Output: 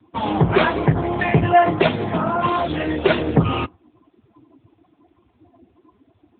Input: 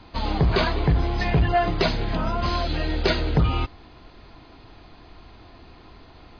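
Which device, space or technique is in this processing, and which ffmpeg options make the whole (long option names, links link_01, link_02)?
mobile call with aggressive noise cancelling: -filter_complex "[0:a]asplit=3[link_01][link_02][link_03];[link_01]afade=type=out:start_time=1.71:duration=0.02[link_04];[link_02]highpass=frequency=87:width=0.5412,highpass=frequency=87:width=1.3066,afade=type=in:start_time=1.71:duration=0.02,afade=type=out:start_time=2.59:duration=0.02[link_05];[link_03]afade=type=in:start_time=2.59:duration=0.02[link_06];[link_04][link_05][link_06]amix=inputs=3:normalize=0,highpass=frequency=150:poles=1,afftdn=noise_reduction=23:noise_floor=-38,volume=8.5dB" -ar 8000 -c:a libopencore_amrnb -b:a 7950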